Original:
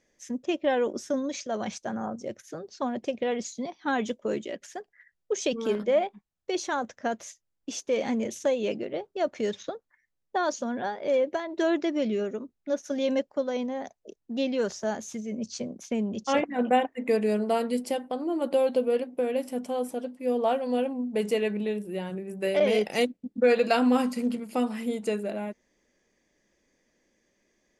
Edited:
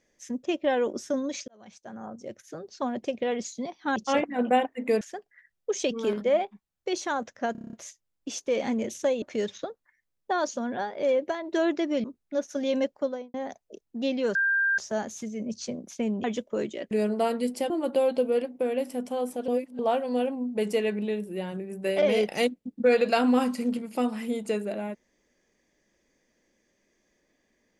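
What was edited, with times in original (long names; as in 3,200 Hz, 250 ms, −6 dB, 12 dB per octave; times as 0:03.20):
0:01.48–0:02.73: fade in
0:03.96–0:04.63: swap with 0:16.16–0:17.21
0:07.14: stutter 0.03 s, 8 plays
0:08.63–0:09.27: remove
0:12.09–0:12.39: remove
0:13.38–0:13.69: fade out and dull
0:14.70: insert tone 1,590 Hz −21 dBFS 0.43 s
0:18.00–0:18.28: remove
0:20.06–0:20.37: reverse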